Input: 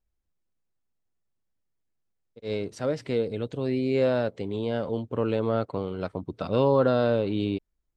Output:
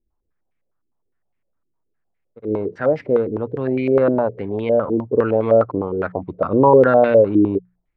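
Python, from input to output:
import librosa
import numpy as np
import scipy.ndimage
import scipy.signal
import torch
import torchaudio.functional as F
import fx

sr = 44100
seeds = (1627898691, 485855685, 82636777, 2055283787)

y = fx.hum_notches(x, sr, base_hz=60, count=3)
y = fx.filter_held_lowpass(y, sr, hz=9.8, low_hz=330.0, high_hz=2200.0)
y = y * librosa.db_to_amplitude(5.0)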